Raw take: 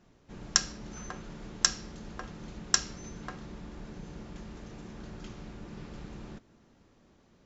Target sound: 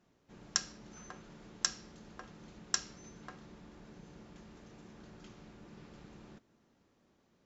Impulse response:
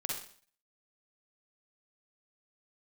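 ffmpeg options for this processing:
-af "lowshelf=f=74:g=-11.5,volume=0.422"

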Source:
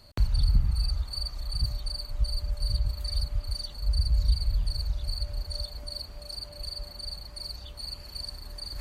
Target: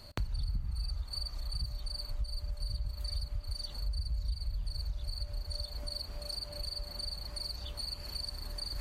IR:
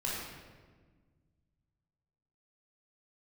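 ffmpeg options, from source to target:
-filter_complex "[0:a]acompressor=threshold=0.0112:ratio=3,asplit=2[s0][s1];[1:a]atrim=start_sample=2205[s2];[s1][s2]afir=irnorm=-1:irlink=0,volume=0.0422[s3];[s0][s3]amix=inputs=2:normalize=0,volume=1.33"

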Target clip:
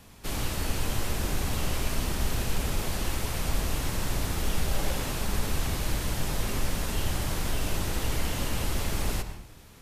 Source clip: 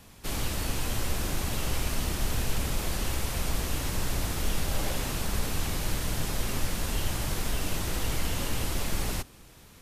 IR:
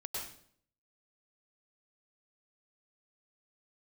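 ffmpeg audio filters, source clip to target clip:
-filter_complex "[0:a]asplit=2[s0][s1];[1:a]atrim=start_sample=2205,highshelf=f=4500:g=-9[s2];[s1][s2]afir=irnorm=-1:irlink=0,volume=0.596[s3];[s0][s3]amix=inputs=2:normalize=0,volume=0.794"

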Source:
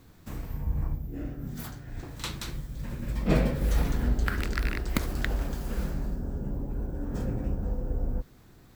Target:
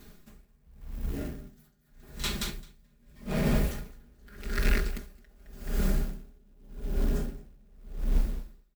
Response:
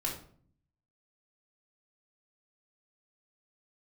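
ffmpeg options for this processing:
-filter_complex "[0:a]equalizer=f=960:t=o:w=0.58:g=-5.5,bandreject=f=50:t=h:w=6,bandreject=f=100:t=h:w=6,bandreject=f=150:t=h:w=6,bandreject=f=200:t=h:w=6,bandreject=f=250:t=h:w=6,bandreject=f=300:t=h:w=6,bandreject=f=350:t=h:w=6,bandreject=f=400:t=h:w=6,aecho=1:1:4.9:0.92,asoftclip=type=tanh:threshold=0.0891,acrusher=bits=5:mode=log:mix=0:aa=0.000001,aecho=1:1:215|430|645|860|1075|1290:0.398|0.199|0.0995|0.0498|0.0249|0.0124,asplit=2[s0][s1];[1:a]atrim=start_sample=2205,highshelf=f=7600:g=10[s2];[s1][s2]afir=irnorm=-1:irlink=0,volume=0.237[s3];[s0][s3]amix=inputs=2:normalize=0,aeval=exprs='val(0)*pow(10,-34*(0.5-0.5*cos(2*PI*0.85*n/s))/20)':c=same,volume=1.19"

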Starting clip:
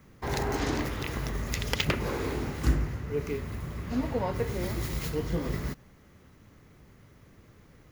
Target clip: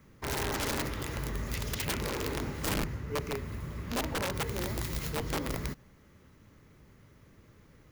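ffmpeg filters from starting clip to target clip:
-af "aeval=exprs='(mod(14.1*val(0)+1,2)-1)/14.1':c=same,bandreject=f=730:w=13,volume=0.75"

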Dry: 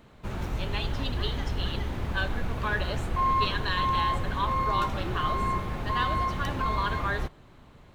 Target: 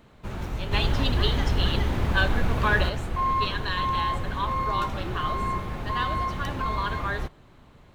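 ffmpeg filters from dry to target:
-filter_complex "[0:a]asplit=3[s0][s1][s2];[s0]afade=t=out:st=0.71:d=0.02[s3];[s1]acontrast=69,afade=t=in:st=0.71:d=0.02,afade=t=out:st=2.88:d=0.02[s4];[s2]afade=t=in:st=2.88:d=0.02[s5];[s3][s4][s5]amix=inputs=3:normalize=0"

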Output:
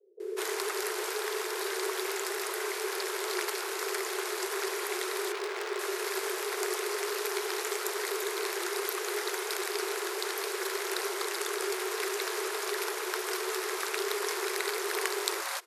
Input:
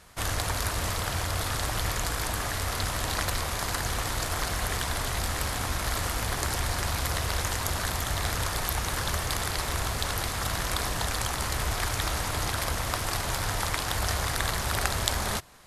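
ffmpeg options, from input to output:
-filter_complex "[0:a]asettb=1/sr,asplit=3[s0][s1][s2];[s0]atrim=end=5.124[s3];[s1]atrim=start=5.12:end=5.59,asetpts=PTS-STARTPTS,afade=t=in:d=0.004:c=qsin,afade=t=out:st=0.466:d=0.004:c=qsin,adynamicsmooth=sensitivity=8:basefreq=1200[s4];[s2]atrim=start=5.586[s5];[s3][s4]acrossfade=d=0.004:c1=hsin:c2=qsin[s6];[s6][s5]acrossfade=d=0.004:c1=qsin:c2=hsin,acrossover=split=180[s7][s8];[s8]adelay=200[s9];[s7][s9]amix=inputs=2:normalize=0,afreqshift=340,volume=0.631"

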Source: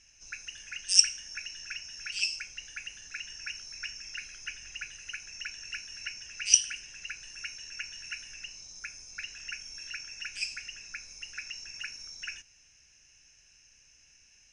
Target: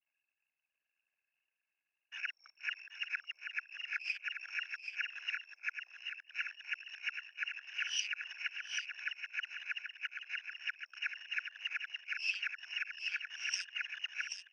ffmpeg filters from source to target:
-af "areverse,lowpass=3200,aemphasis=mode=reproduction:type=riaa,acompressor=threshold=0.00708:ratio=8,anlmdn=0.000251,highpass=f=920:w=0.5412,highpass=f=920:w=1.3066,aecho=1:1:781:0.473,volume=3.76"

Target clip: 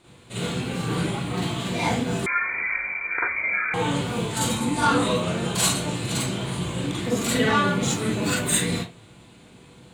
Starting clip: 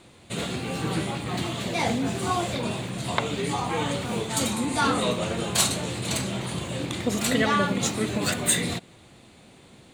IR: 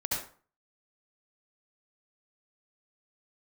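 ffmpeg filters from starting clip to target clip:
-filter_complex "[1:a]atrim=start_sample=2205,asetrate=74970,aresample=44100[s0];[0:a][s0]afir=irnorm=-1:irlink=0,asettb=1/sr,asplit=3[s1][s2][s3];[s1]atrim=end=2.264[s4];[s2]atrim=start=2.26:end=3.74,asetpts=PTS-STARTPTS,afade=t=in:d=0.004:c=qsin,afade=t=out:st=1.476:d=0.004:c=qsin,lowpass=f=2100:t=q:w=0.5098,lowpass=f=2100:t=q:w=0.6013,lowpass=f=2100:t=q:w=0.9,lowpass=f=2100:t=q:w=2.563,afreqshift=-2500[s5];[s3]atrim=start=3.736[s6];[s4][s5]acrossfade=d=0.004:c1=hsin:c2=qsin[s7];[s7][s6]acrossfade=d=0.004:c1=qsin:c2=hsin"

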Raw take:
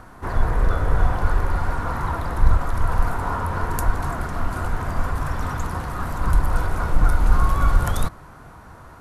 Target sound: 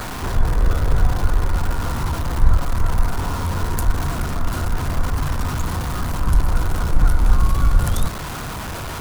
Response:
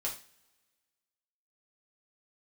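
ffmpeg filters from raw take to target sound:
-filter_complex "[0:a]aeval=exprs='val(0)+0.5*0.0631*sgn(val(0))':c=same,acrossover=split=380|3000[s0][s1][s2];[s1]acompressor=threshold=0.0282:ratio=4[s3];[s0][s3][s2]amix=inputs=3:normalize=0,volume=1.12"

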